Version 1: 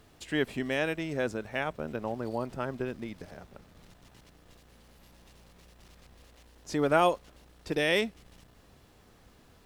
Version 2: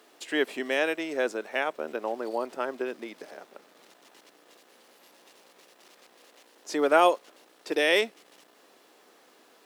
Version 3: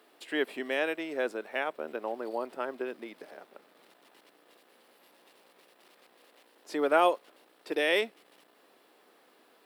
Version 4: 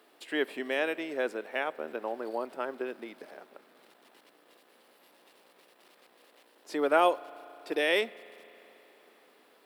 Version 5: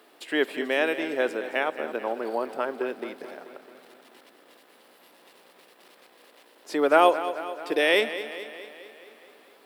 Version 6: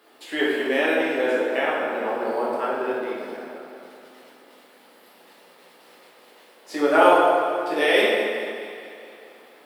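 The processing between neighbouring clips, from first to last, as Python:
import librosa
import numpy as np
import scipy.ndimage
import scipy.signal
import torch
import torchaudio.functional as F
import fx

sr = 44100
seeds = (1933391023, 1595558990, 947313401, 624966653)

y1 = scipy.signal.sosfilt(scipy.signal.butter(4, 310.0, 'highpass', fs=sr, output='sos'), x)
y1 = F.gain(torch.from_numpy(y1), 4.0).numpy()
y2 = fx.peak_eq(y1, sr, hz=6400.0, db=-10.0, octaves=0.61)
y2 = F.gain(torch.from_numpy(y2), -3.5).numpy()
y3 = fx.rev_spring(y2, sr, rt60_s=4.0, pass_ms=(35,), chirp_ms=30, drr_db=19.5)
y4 = fx.echo_feedback(y3, sr, ms=218, feedback_pct=59, wet_db=-12.5)
y4 = F.gain(torch.from_numpy(y4), 5.5).numpy()
y5 = fx.rev_plate(y4, sr, seeds[0], rt60_s=1.9, hf_ratio=0.55, predelay_ms=0, drr_db=-7.5)
y5 = F.gain(torch.from_numpy(y5), -4.0).numpy()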